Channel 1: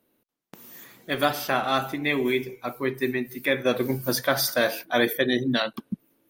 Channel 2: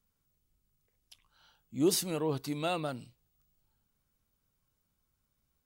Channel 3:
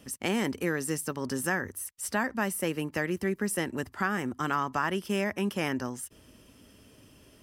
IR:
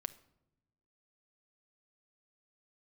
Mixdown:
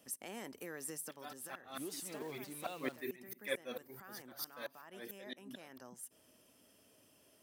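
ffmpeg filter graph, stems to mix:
-filter_complex "[0:a]highshelf=frequency=9400:gain=10.5,aphaser=in_gain=1:out_gain=1:delay=4:decay=0.42:speed=1.2:type=sinusoidal,aeval=exprs='val(0)*pow(10,-30*if(lt(mod(-4.5*n/s,1),2*abs(-4.5)/1000),1-mod(-4.5*n/s,1)/(2*abs(-4.5)/1000),(mod(-4.5*n/s,1)-2*abs(-4.5)/1000)/(1-2*abs(-4.5)/1000))/20)':channel_layout=same,volume=-9dB,afade=type=in:start_time=2.16:duration=0.3:silence=0.298538,afade=type=out:start_time=3.35:duration=0.78:silence=0.298538,asplit=2[link_01][link_02];[1:a]alimiter=limit=-22.5dB:level=0:latency=1:release=94,acrusher=bits=8:dc=4:mix=0:aa=0.000001,volume=-12.5dB[link_03];[2:a]equalizer=frequency=660:width_type=o:width=0.72:gain=6.5,alimiter=limit=-23dB:level=0:latency=1:release=231,highshelf=frequency=8100:gain=10.5,volume=-13dB,asplit=2[link_04][link_05];[link_05]volume=-12dB[link_06];[link_02]apad=whole_len=327390[link_07];[link_04][link_07]sidechaincompress=threshold=-55dB:ratio=8:attack=16:release=496[link_08];[3:a]atrim=start_sample=2205[link_09];[link_06][link_09]afir=irnorm=-1:irlink=0[link_10];[link_01][link_03][link_08][link_10]amix=inputs=4:normalize=0,highpass=69,lowshelf=frequency=160:gain=-11.5"

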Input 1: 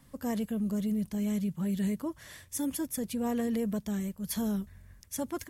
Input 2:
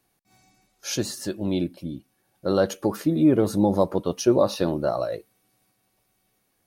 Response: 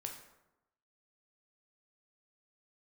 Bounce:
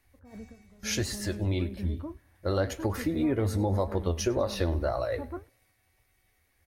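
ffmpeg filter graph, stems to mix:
-filter_complex "[0:a]lowpass=frequency=1700:width=0.5412,lowpass=frequency=1700:width=1.3066,acompressor=threshold=-31dB:ratio=6,volume=2dB,asplit=2[link_01][link_02];[link_02]volume=-18.5dB[link_03];[1:a]equalizer=frequency=2000:width=2.9:gain=12.5,volume=1.5dB,asplit=3[link_04][link_05][link_06];[link_05]volume=-20dB[link_07];[link_06]apad=whole_len=242194[link_08];[link_01][link_08]sidechaingate=range=-22dB:threshold=-55dB:ratio=16:detection=peak[link_09];[2:a]atrim=start_sample=2205[link_10];[link_03][link_10]afir=irnorm=-1:irlink=0[link_11];[link_07]aecho=0:1:99|198|297|396|495|594:1|0.4|0.16|0.064|0.0256|0.0102[link_12];[link_09][link_04][link_11][link_12]amix=inputs=4:normalize=0,lowshelf=frequency=110:width_type=q:width=3:gain=11.5,flanger=delay=7.2:depth=5:regen=69:speed=1.8:shape=sinusoidal,acompressor=threshold=-24dB:ratio=4"

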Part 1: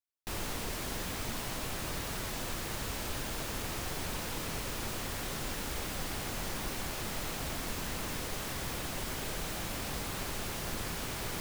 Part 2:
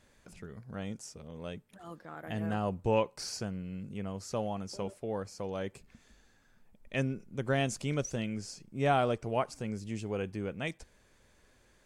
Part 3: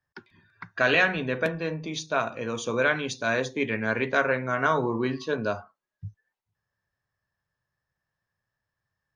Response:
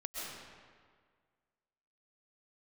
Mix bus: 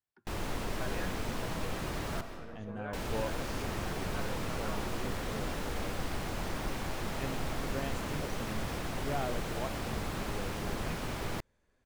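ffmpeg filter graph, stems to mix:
-filter_complex "[0:a]highshelf=frequency=9400:gain=-5,volume=0dB,asplit=3[link_01][link_02][link_03];[link_01]atrim=end=2.21,asetpts=PTS-STARTPTS,afade=type=out:start_time=2.206:duration=0.004:curve=hsin[link_04];[link_02]atrim=start=2.21:end=2.93,asetpts=PTS-STARTPTS,volume=0[link_05];[link_03]atrim=start=2.93,asetpts=PTS-STARTPTS,afade=type=in:duration=0.004:curve=hsin[link_06];[link_04][link_05][link_06]concat=n=3:v=0:a=1,asplit=2[link_07][link_08];[link_08]volume=-6dB[link_09];[1:a]adelay=250,volume=-8.5dB[link_10];[2:a]lowpass=frequency=2200:poles=1,volume=-19dB[link_11];[3:a]atrim=start_sample=2205[link_12];[link_09][link_12]afir=irnorm=-1:irlink=0[link_13];[link_07][link_10][link_11][link_13]amix=inputs=4:normalize=0,highshelf=frequency=2400:gain=-8"

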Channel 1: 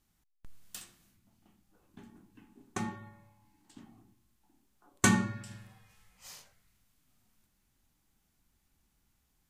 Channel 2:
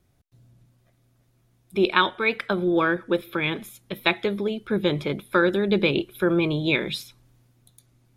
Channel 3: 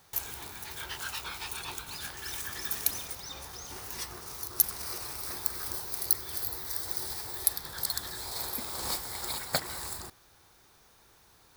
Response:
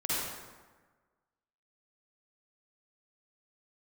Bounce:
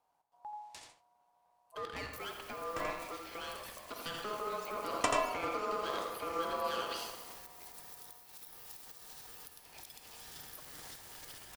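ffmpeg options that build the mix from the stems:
-filter_complex "[0:a]lowpass=6100,agate=range=-17dB:threshold=-58dB:ratio=16:detection=peak,volume=0dB,asplit=2[link_01][link_02];[link_02]volume=-6.5dB[link_03];[1:a]acompressor=threshold=-26dB:ratio=2,aeval=exprs='0.0708*(cos(1*acos(clip(val(0)/0.0708,-1,1)))-cos(1*PI/2))+0.00501*(cos(6*acos(clip(val(0)/0.0708,-1,1)))-cos(6*PI/2))':channel_layout=same,volume=-3dB,afade=type=in:start_time=3.56:duration=0.54:silence=0.375837,asplit=4[link_04][link_05][link_06][link_07];[link_05]volume=-14.5dB[link_08];[link_06]volume=-13dB[link_09];[2:a]acompressor=threshold=-35dB:ratio=6,adelay=2000,volume=-10dB,asplit=2[link_10][link_11];[link_11]volume=-12dB[link_12];[link_07]apad=whole_len=418920[link_13];[link_01][link_13]sidechaincompress=threshold=-39dB:ratio=4:attack=7.3:release=100[link_14];[link_04][link_10]amix=inputs=2:normalize=0,alimiter=level_in=10.5dB:limit=-24dB:level=0:latency=1:release=56,volume=-10.5dB,volume=0dB[link_15];[3:a]atrim=start_sample=2205[link_16];[link_08][link_12]amix=inputs=2:normalize=0[link_17];[link_17][link_16]afir=irnorm=-1:irlink=0[link_18];[link_03][link_09]amix=inputs=2:normalize=0,aecho=0:1:84:1[link_19];[link_14][link_15][link_18][link_19]amix=inputs=4:normalize=0,aeval=exprs='val(0)*sin(2*PI*840*n/s)':channel_layout=same"

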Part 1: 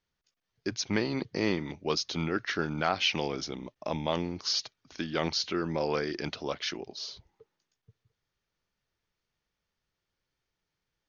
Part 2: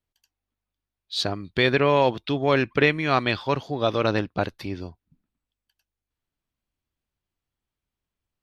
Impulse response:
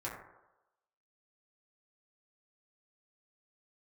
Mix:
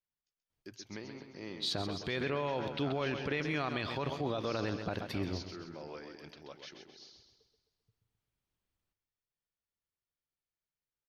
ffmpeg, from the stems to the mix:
-filter_complex "[0:a]volume=-17dB,asplit=3[link_01][link_02][link_03];[link_02]volume=-21dB[link_04];[link_03]volume=-6.5dB[link_05];[1:a]acompressor=threshold=-23dB:ratio=4,adelay=500,volume=-3dB,asplit=2[link_06][link_07];[link_07]volume=-12.5dB[link_08];[2:a]atrim=start_sample=2205[link_09];[link_04][link_09]afir=irnorm=-1:irlink=0[link_10];[link_05][link_08]amix=inputs=2:normalize=0,aecho=0:1:131|262|393|524|655|786|917:1|0.48|0.23|0.111|0.0531|0.0255|0.0122[link_11];[link_01][link_06][link_10][link_11]amix=inputs=4:normalize=0,alimiter=level_in=1dB:limit=-24dB:level=0:latency=1:release=27,volume=-1dB"

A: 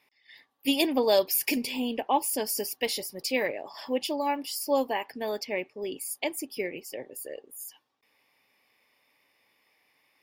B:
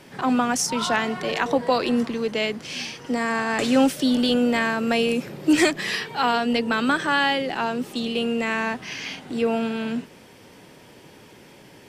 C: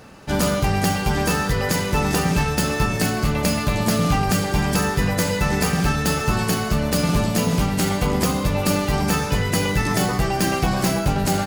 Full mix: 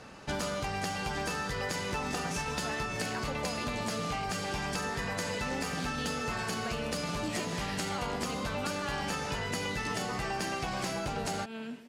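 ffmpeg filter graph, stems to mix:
ffmpeg -i stem1.wav -i stem2.wav -i stem3.wav -filter_complex "[1:a]adelay=1750,volume=-11dB,asplit=2[link_01][link_02];[link_02]volume=-13dB[link_03];[2:a]lowpass=8400,acrossover=split=410[link_04][link_05];[link_04]acompressor=threshold=-24dB:ratio=2.5[link_06];[link_06][link_05]amix=inputs=2:normalize=0,volume=-3dB[link_07];[link_03]aecho=0:1:143:1[link_08];[link_01][link_07][link_08]amix=inputs=3:normalize=0,lowshelf=frequency=400:gain=-5,acompressor=threshold=-31dB:ratio=6" out.wav

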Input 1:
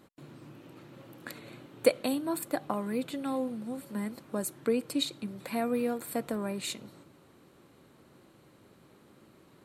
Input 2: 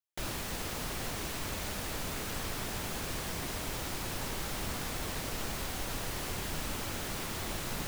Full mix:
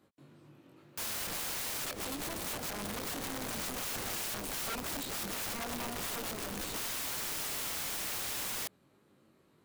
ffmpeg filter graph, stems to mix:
ffmpeg -i stem1.wav -i stem2.wav -filter_complex "[0:a]highpass=40,acrossover=split=390[link_01][link_02];[link_01]acompressor=threshold=-32dB:ratio=6[link_03];[link_03][link_02]amix=inputs=2:normalize=0,flanger=delay=19.5:depth=2.6:speed=2.1,volume=-5.5dB,asplit=2[link_04][link_05];[1:a]equalizer=frequency=330:width=0.67:gain=10,adelay=800,volume=2.5dB[link_06];[link_05]apad=whole_len=382484[link_07];[link_06][link_07]sidechaincompress=threshold=-49dB:ratio=16:attack=5.9:release=103[link_08];[link_04][link_08]amix=inputs=2:normalize=0,aeval=exprs='(mod(42.2*val(0)+1,2)-1)/42.2':channel_layout=same" out.wav

